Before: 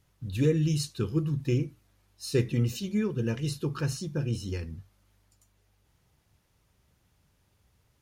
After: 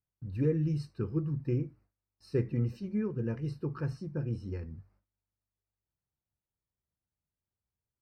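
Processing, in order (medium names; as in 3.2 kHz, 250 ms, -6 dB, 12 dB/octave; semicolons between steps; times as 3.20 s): boxcar filter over 13 samples; gate with hold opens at -55 dBFS; trim -4 dB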